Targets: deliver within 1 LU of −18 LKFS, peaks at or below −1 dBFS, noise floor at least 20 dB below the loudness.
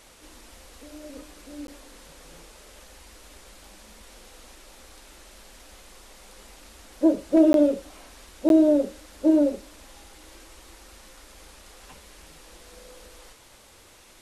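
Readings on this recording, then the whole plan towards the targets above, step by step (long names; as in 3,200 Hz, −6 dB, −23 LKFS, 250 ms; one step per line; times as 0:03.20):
number of dropouts 3; longest dropout 12 ms; integrated loudness −21.5 LKFS; sample peak −7.5 dBFS; target loudness −18.0 LKFS
→ repair the gap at 0:01.67/0:07.53/0:08.49, 12 ms
level +3.5 dB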